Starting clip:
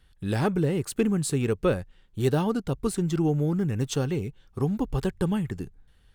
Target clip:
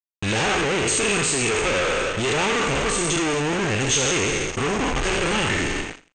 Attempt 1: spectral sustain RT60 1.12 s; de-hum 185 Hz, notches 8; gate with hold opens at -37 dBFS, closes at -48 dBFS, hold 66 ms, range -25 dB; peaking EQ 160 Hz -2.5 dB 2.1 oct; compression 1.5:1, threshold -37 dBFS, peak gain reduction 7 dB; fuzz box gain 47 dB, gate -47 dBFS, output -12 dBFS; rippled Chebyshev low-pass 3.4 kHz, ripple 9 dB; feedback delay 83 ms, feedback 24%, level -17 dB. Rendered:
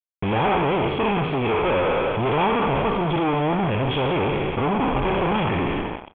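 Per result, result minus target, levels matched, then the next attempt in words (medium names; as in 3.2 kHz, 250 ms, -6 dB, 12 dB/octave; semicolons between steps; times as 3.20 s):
compression: peak gain reduction +7 dB; 4 kHz band -6.5 dB; 125 Hz band +4.0 dB
spectral sustain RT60 1.12 s; de-hum 185 Hz, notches 8; gate with hold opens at -37 dBFS, closes at -48 dBFS, hold 66 ms, range -25 dB; peaking EQ 160 Hz -2.5 dB 2.1 oct; fuzz box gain 47 dB, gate -47 dBFS, output -12 dBFS; rippled Chebyshev low-pass 3.4 kHz, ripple 9 dB; feedback delay 83 ms, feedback 24%, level -17 dB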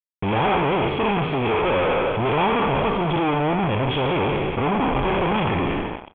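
4 kHz band -6.0 dB; 125 Hz band +3.5 dB
spectral sustain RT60 1.12 s; de-hum 185 Hz, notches 8; gate with hold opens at -37 dBFS, closes at -48 dBFS, hold 66 ms, range -25 dB; peaking EQ 160 Hz -2.5 dB 2.1 oct; fuzz box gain 47 dB, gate -47 dBFS, output -12 dBFS; rippled Chebyshev low-pass 8.7 kHz, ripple 9 dB; feedback delay 83 ms, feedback 24%, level -17 dB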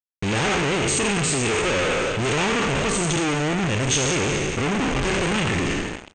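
125 Hz band +3.5 dB
spectral sustain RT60 1.12 s; de-hum 185 Hz, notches 8; gate with hold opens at -37 dBFS, closes at -48 dBFS, hold 66 ms, range -25 dB; peaking EQ 160 Hz -11.5 dB 2.1 oct; fuzz box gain 47 dB, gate -47 dBFS, output -12 dBFS; rippled Chebyshev low-pass 8.7 kHz, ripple 9 dB; feedback delay 83 ms, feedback 24%, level -17 dB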